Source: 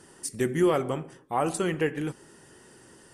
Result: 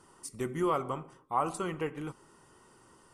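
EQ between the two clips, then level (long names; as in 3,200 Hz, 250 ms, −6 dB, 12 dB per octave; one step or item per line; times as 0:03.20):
low-shelf EQ 63 Hz +9.5 dB
parametric band 1,100 Hz +12 dB 0.76 octaves
notch filter 1,700 Hz, Q 5.8
−9.0 dB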